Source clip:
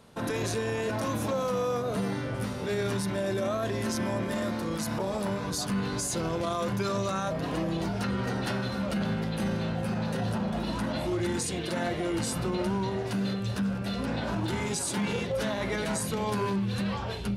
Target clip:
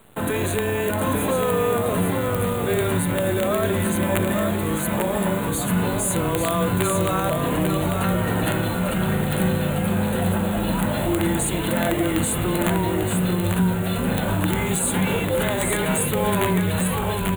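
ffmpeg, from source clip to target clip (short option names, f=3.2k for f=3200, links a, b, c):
-af "afreqshift=-15,acrusher=bits=8:dc=4:mix=0:aa=0.000001,aeval=exprs='(mod(9.44*val(0)+1,2)-1)/9.44':c=same,asuperstop=centerf=5300:order=4:qfactor=1.3,highshelf=f=7.8k:g=6.5,aecho=1:1:845:0.562,volume=7dB"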